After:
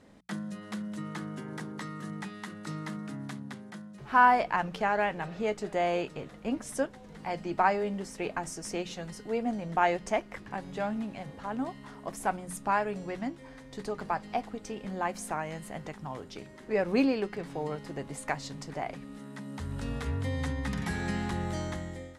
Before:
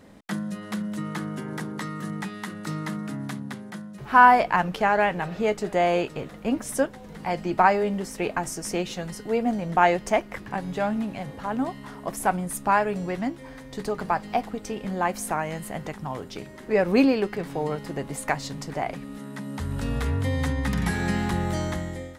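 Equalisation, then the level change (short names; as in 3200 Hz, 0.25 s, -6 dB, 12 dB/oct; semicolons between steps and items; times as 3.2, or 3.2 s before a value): air absorption 58 m; bell 11000 Hz +7 dB 1.7 oct; notches 60/120/180 Hz; -6.5 dB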